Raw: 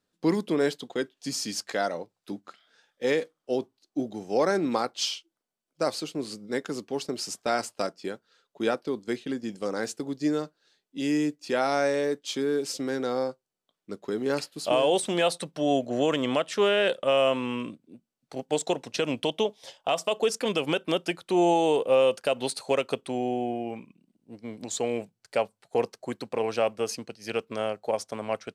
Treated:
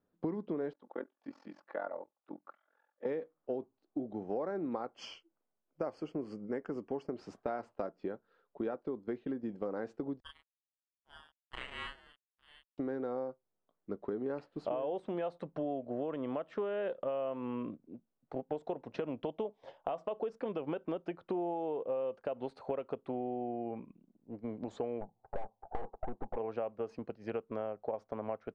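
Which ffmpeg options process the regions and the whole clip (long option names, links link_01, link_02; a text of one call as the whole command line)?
ffmpeg -i in.wav -filter_complex "[0:a]asettb=1/sr,asplit=3[link_01][link_02][link_03];[link_01]atrim=end=0.734[link_04];[link_02]atrim=start=0.73:end=3.06,asetpts=PTS-STARTPTS,afade=type=in:duration=0.004:curve=qsin,afade=type=out:start_time=2.326:duration=0.004:curve=qsin,bandpass=frequency=1100:width_type=q:width=0.89,aecho=1:1:3.5:0.46,atrim=end_sample=102753,tremolo=f=43:d=0.889[link_05];[link_03]atrim=start=3.056[link_06];[link_04][link_05]acrossfade=duration=0.004:curve1=hsin:curve2=qsin[link_07];[link_07][link_06]acrossfade=duration=0.004:curve1=qsin:curve2=hsin,asettb=1/sr,asplit=3[link_08][link_09][link_10];[link_08]atrim=end=4.934[link_11];[link_09]atrim=start=4.93:end=7.13,asetpts=PTS-STARTPTS,afade=type=in:duration=0.004:curve=qsin,afade=type=out:start_time=2.196:duration=0.004:curve=qsin,asuperstop=centerf=3800:order=4:qfactor=2.9,highshelf=frequency=3300:gain=7.5[link_12];[link_10]atrim=start=7.126[link_13];[link_11][link_12]acrossfade=duration=0.004:curve1=hsin:curve2=qsin[link_14];[link_14][link_13]acrossfade=duration=0.004:curve1=qsin:curve2=hsin,asettb=1/sr,asplit=3[link_15][link_16][link_17];[link_15]atrim=end=10.204[link_18];[link_16]atrim=start=10.2:end=12.78,asetpts=PTS-STARTPTS,afade=type=in:duration=0.004:curve=qsin,afade=type=out:start_time=2.576:duration=0.004:curve=qsin,lowpass=frequency=3000:width_type=q:width=0.5098,lowpass=frequency=3000:width_type=q:width=0.6013,lowpass=frequency=3000:width_type=q:width=0.9,lowpass=frequency=3000:width_type=q:width=2.563,afreqshift=-3500,acrusher=bits=2:mix=0:aa=0.5,asplit=2[link_19][link_20];[link_20]adelay=32,volume=-2dB[link_21];[link_19][link_21]amix=inputs=2:normalize=0,atrim=end_sample=113778[link_22];[link_17]atrim=start=12.776[link_23];[link_18][link_22]acrossfade=duration=0.004:curve1=hsin:curve2=qsin[link_24];[link_24][link_23]acrossfade=duration=0.004:curve1=qsin:curve2=hsin,asettb=1/sr,asplit=3[link_25][link_26][link_27];[link_25]atrim=end=25.014[link_28];[link_26]atrim=start=25.01:end=26.37,asetpts=PTS-STARTPTS,afade=type=in:duration=0.004:curve=qsin,afade=type=out:start_time=1.356:duration=0.004:curve=qsin,acontrast=45,lowpass=frequency=810:width_type=q:width=7.1,aeval=exprs='(tanh(28.2*val(0)+0.65)-tanh(0.65))/28.2':channel_layout=same[link_29];[link_27]atrim=start=26.366[link_30];[link_28][link_29]acrossfade=duration=0.004:curve1=hsin:curve2=qsin[link_31];[link_31][link_30]acrossfade=duration=0.004:curve1=qsin:curve2=hsin,lowpass=1100,asubboost=boost=3.5:cutoff=59,acompressor=threshold=-35dB:ratio=6,volume=1dB" out.wav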